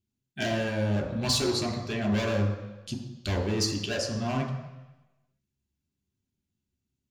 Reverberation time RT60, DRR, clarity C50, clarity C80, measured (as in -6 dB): 1.0 s, 0.5 dB, 7.0 dB, 9.0 dB